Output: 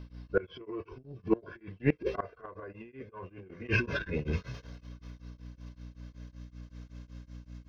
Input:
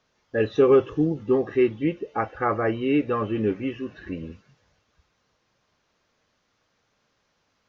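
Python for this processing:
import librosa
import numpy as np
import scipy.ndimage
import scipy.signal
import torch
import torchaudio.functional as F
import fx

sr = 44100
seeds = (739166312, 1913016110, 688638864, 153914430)

y = fx.pitch_glide(x, sr, semitones=-3.0, runs='ending unshifted')
y = fx.low_shelf(y, sr, hz=88.0, db=-4.5)
y = y + 0.62 * np.pad(y, (int(1.9 * sr / 1000.0), 0))[:len(y)]
y = fx.transient(y, sr, attack_db=-10, sustain_db=11)
y = fx.peak_eq(y, sr, hz=950.0, db=-4.0, octaves=0.26)
y = fx.add_hum(y, sr, base_hz=60, snr_db=23)
y = fx.gate_flip(y, sr, shuts_db=-21.0, range_db=-26)
y = y * np.abs(np.cos(np.pi * 5.3 * np.arange(len(y)) / sr))
y = F.gain(torch.from_numpy(y), 8.5).numpy()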